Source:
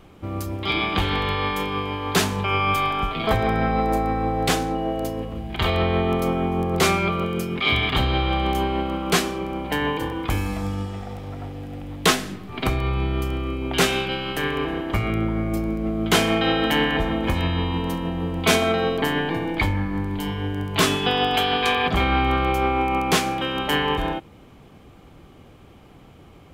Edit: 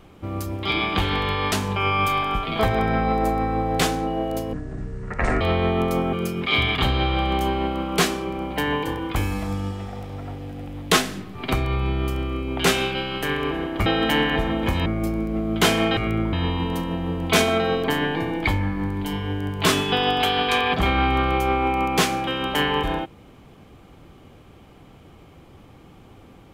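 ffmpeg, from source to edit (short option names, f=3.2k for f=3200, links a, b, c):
-filter_complex "[0:a]asplit=9[a][b][c][d][e][f][g][h][i];[a]atrim=end=1.522[j];[b]atrim=start=2.198:end=5.214[k];[c]atrim=start=5.21:end=5.72,asetpts=PTS-STARTPTS,asetrate=25578,aresample=44100[l];[d]atrim=start=5.716:end=6.442[m];[e]atrim=start=7.268:end=15.002[n];[f]atrim=start=16.468:end=17.472[o];[g]atrim=start=15.358:end=16.472[p];[h]atrim=start=14.998:end=15.362[q];[i]atrim=start=17.468[r];[j][k]acrossfade=d=0.004:c1=hsin:c2=hsin[s];[s][l]acrossfade=d=0.004:c1=hsin:c2=hsin[t];[t][m]acrossfade=d=0.004:c1=hsin:c2=hsin[u];[u][n]acrossfade=d=0.004:c1=hsin:c2=hsin[v];[v][o]acrossfade=d=0.004:c1=hsin:c2=hsin[w];[w][p]acrossfade=d=0.004:c1=hsin:c2=hsin[x];[x][q]acrossfade=d=0.004:c1=hsin:c2=hsin[y];[y][r]acrossfade=d=0.004:c1=hsin:c2=hsin"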